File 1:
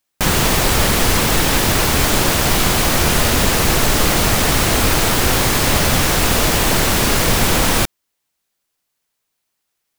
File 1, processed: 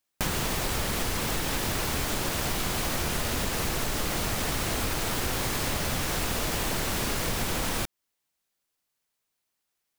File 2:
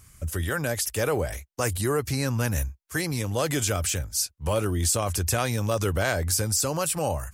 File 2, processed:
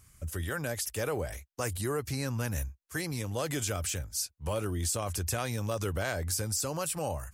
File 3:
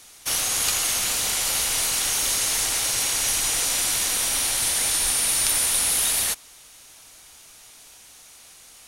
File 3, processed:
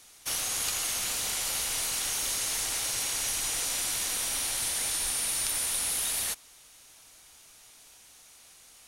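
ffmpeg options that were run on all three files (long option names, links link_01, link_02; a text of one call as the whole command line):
ffmpeg -i in.wav -af "acompressor=threshold=-19dB:ratio=6,volume=-6.5dB" out.wav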